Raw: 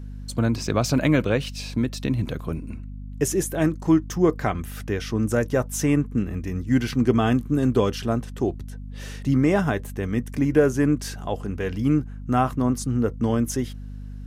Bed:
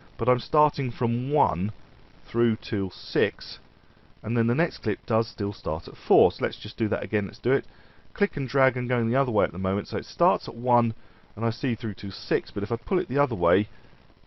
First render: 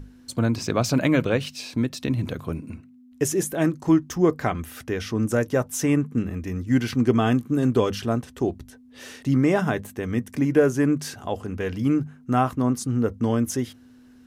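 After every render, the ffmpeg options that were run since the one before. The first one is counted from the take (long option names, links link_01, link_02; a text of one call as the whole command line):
ffmpeg -i in.wav -af "bandreject=frequency=50:width_type=h:width=6,bandreject=frequency=100:width_type=h:width=6,bandreject=frequency=150:width_type=h:width=6,bandreject=frequency=200:width_type=h:width=6" out.wav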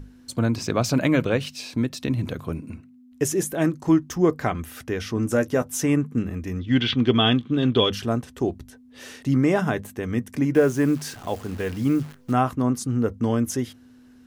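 ffmpeg -i in.wav -filter_complex "[0:a]asettb=1/sr,asplit=3[link_01][link_02][link_03];[link_01]atrim=end=5.164[link_04];[link_02]atrim=start=5.16:end=5.81,asetpts=PTS-STARTPTS,afade=type=in:duration=0.004:curve=qsin,afade=type=out:start_time=0.646:duration=0.004:curve=qsin,asplit=2[link_05][link_06];[link_06]adelay=12,volume=-7.5dB[link_07];[link_05][link_07]amix=inputs=2:normalize=0,atrim=end_sample=28665[link_08];[link_03]atrim=start=5.806[link_09];[link_04][link_08]acrossfade=duration=0.004:curve1=hsin:curve2=qsin[link_10];[link_10][link_09]acrossfade=duration=0.004:curve1=qsin:curve2=hsin,asettb=1/sr,asplit=3[link_11][link_12][link_13];[link_11]atrim=end=6.594[link_14];[link_12]atrim=start=6.59:end=7.92,asetpts=PTS-STARTPTS,afade=type=in:duration=0.004:curve=qsin,afade=type=out:start_time=1.326:duration=0.004:curve=qsin,lowpass=frequency=3400:width_type=q:width=8.3[link_15];[link_13]atrim=start=7.916[link_16];[link_14][link_15]acrossfade=duration=0.004:curve1=hsin:curve2=qsin[link_17];[link_17][link_16]acrossfade=duration=0.004:curve1=qsin:curve2=hsin,asettb=1/sr,asplit=3[link_18][link_19][link_20];[link_18]atrim=end=10.554[link_21];[link_19]atrim=start=10.55:end=12.32,asetpts=PTS-STARTPTS,afade=type=in:duration=0.004:curve=qsin,afade=type=out:start_time=1.766:duration=0.004:curve=qsin,acrusher=bits=8:dc=4:mix=0:aa=0.000001[link_22];[link_20]atrim=start=12.316[link_23];[link_21][link_22]acrossfade=duration=0.004:curve1=hsin:curve2=qsin[link_24];[link_24][link_23]acrossfade=duration=0.004:curve1=qsin:curve2=hsin" out.wav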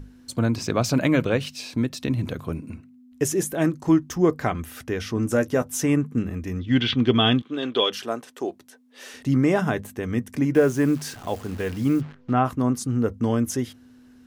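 ffmpeg -i in.wav -filter_complex "[0:a]asettb=1/sr,asplit=3[link_01][link_02][link_03];[link_01]atrim=end=7.424[link_04];[link_02]atrim=start=7.42:end=9.14,asetpts=PTS-STARTPTS,afade=type=in:duration=0.004:curve=qsin,afade=type=out:start_time=1.716:duration=0.004:curve=qsin,highpass=400[link_05];[link_03]atrim=start=9.136[link_06];[link_04][link_05]acrossfade=duration=0.004:curve1=hsin:curve2=qsin[link_07];[link_07][link_06]acrossfade=duration=0.004:curve1=qsin:curve2=hsin,asplit=3[link_08][link_09][link_10];[link_08]afade=type=out:start_time=12:duration=0.02[link_11];[link_09]lowpass=3300,afade=type=in:start_time=12:duration=0.02,afade=type=out:start_time=12.44:duration=0.02[link_12];[link_10]afade=type=in:start_time=12.44:duration=0.02[link_13];[link_11][link_12][link_13]amix=inputs=3:normalize=0" out.wav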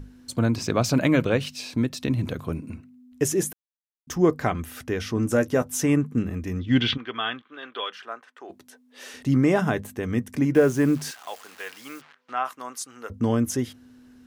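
ffmpeg -i in.wav -filter_complex "[0:a]asplit=3[link_01][link_02][link_03];[link_01]afade=type=out:start_time=6.96:duration=0.02[link_04];[link_02]bandpass=frequency=1500:width_type=q:width=1.6,afade=type=in:start_time=6.96:duration=0.02,afade=type=out:start_time=8.49:duration=0.02[link_05];[link_03]afade=type=in:start_time=8.49:duration=0.02[link_06];[link_04][link_05][link_06]amix=inputs=3:normalize=0,asettb=1/sr,asplit=3[link_07][link_08][link_09];[link_07]atrim=end=11.114[link_10];[link_08]atrim=start=11.11:end=13.1,asetpts=PTS-STARTPTS,afade=type=in:duration=0.004:curve=qsin,afade=type=out:start_time=1.986:duration=0.004:curve=qsin,highpass=1000[link_11];[link_09]atrim=start=13.096[link_12];[link_10][link_11]acrossfade=duration=0.004:curve1=hsin:curve2=qsin[link_13];[link_13][link_12]acrossfade=duration=0.004:curve1=qsin:curve2=hsin,asplit=3[link_14][link_15][link_16];[link_14]atrim=end=3.53,asetpts=PTS-STARTPTS,afade=type=out:start_time=3.526:duration=0.004:curve=hsin[link_17];[link_15]atrim=start=3.53:end=4.07,asetpts=PTS-STARTPTS,volume=0[link_18];[link_16]atrim=start=4.07,asetpts=PTS-STARTPTS,afade=type=in:duration=0.004:curve=hsin[link_19];[link_17][link_18][link_19]concat=n=3:v=0:a=1" out.wav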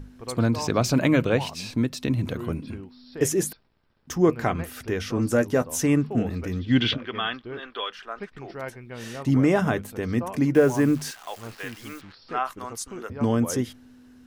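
ffmpeg -i in.wav -i bed.wav -filter_complex "[1:a]volume=-14dB[link_01];[0:a][link_01]amix=inputs=2:normalize=0" out.wav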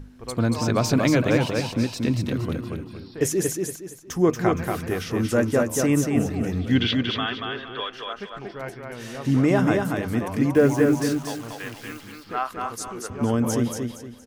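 ffmpeg -i in.wav -af "aecho=1:1:233|466|699|932:0.631|0.202|0.0646|0.0207" out.wav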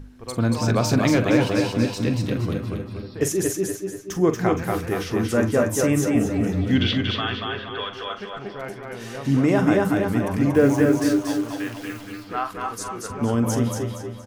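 ffmpeg -i in.wav -filter_complex "[0:a]asplit=2[link_01][link_02];[link_02]adelay=43,volume=-11dB[link_03];[link_01][link_03]amix=inputs=2:normalize=0,asplit=2[link_04][link_05];[link_05]adelay=243,lowpass=frequency=2800:poles=1,volume=-6.5dB,asplit=2[link_06][link_07];[link_07]adelay=243,lowpass=frequency=2800:poles=1,volume=0.5,asplit=2[link_08][link_09];[link_09]adelay=243,lowpass=frequency=2800:poles=1,volume=0.5,asplit=2[link_10][link_11];[link_11]adelay=243,lowpass=frequency=2800:poles=1,volume=0.5,asplit=2[link_12][link_13];[link_13]adelay=243,lowpass=frequency=2800:poles=1,volume=0.5,asplit=2[link_14][link_15];[link_15]adelay=243,lowpass=frequency=2800:poles=1,volume=0.5[link_16];[link_04][link_06][link_08][link_10][link_12][link_14][link_16]amix=inputs=7:normalize=0" out.wav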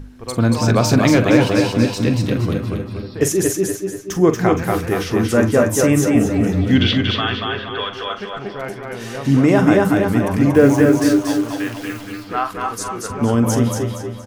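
ffmpeg -i in.wav -af "volume=5.5dB,alimiter=limit=-1dB:level=0:latency=1" out.wav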